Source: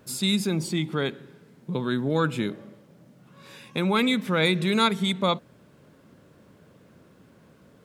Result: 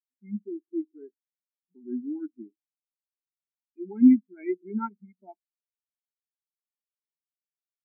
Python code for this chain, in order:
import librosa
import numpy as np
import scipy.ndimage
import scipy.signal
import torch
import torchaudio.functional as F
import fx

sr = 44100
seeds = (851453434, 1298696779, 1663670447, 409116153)

y = fx.fixed_phaser(x, sr, hz=770.0, stages=8)
y = fx.spectral_expand(y, sr, expansion=4.0)
y = F.gain(torch.from_numpy(y), 5.5).numpy()